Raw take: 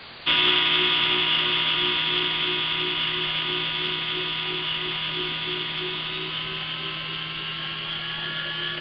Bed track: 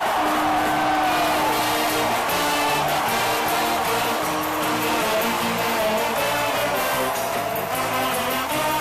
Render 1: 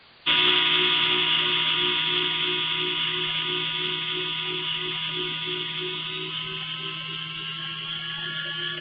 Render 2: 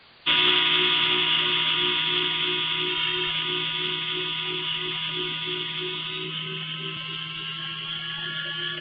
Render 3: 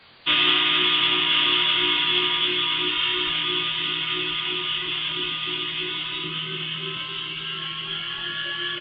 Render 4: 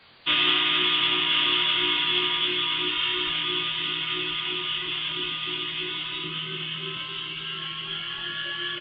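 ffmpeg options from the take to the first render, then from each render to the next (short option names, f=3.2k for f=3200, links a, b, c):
-af "afftdn=nr=11:nf=-32"
-filter_complex "[0:a]asettb=1/sr,asplit=3[a][b][c];[a]atrim=end=2.894[d];[b]atrim=start=2.89:end=3.3,asetpts=PTS-STARTPTS,afade=t=in:d=0.004:c=qsin,afade=t=out:st=0.406:d=0.004:c=qsin,aecho=1:1:2.2:0.65,atrim=end_sample=18081[e];[c]atrim=start=3.296[f];[d][e]acrossfade=d=0.004:c1=hsin:c2=qsin[g];[g][f]acrossfade=d=0.004:c1=qsin:c2=hsin,asettb=1/sr,asplit=3[h][i][j];[h]atrim=end=6.244[k];[i]atrim=start=6.24:end=6.97,asetpts=PTS-STARTPTS,afade=t=in:d=0.004:c=qsin,afade=t=out:st=0.726:d=0.004:c=qsin,highpass=140,equalizer=f=170:t=q:w=4:g=7,equalizer=f=240:t=q:w=4:g=5,equalizer=f=450:t=q:w=4:g=6,equalizer=f=880:t=q:w=4:g=-10,lowpass=f=3.9k:w=0.5412,lowpass=f=3.9k:w=1.3066[l];[j]atrim=start=6.966[m];[k][l]acrossfade=d=0.004:c1=hsin:c2=qsin[n];[n][m]acrossfade=d=0.004:c1=qsin:c2=hsin"
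-filter_complex "[0:a]asplit=2[a][b];[b]adelay=23,volume=-4dB[c];[a][c]amix=inputs=2:normalize=0,aecho=1:1:1035:0.422"
-af "volume=-2.5dB"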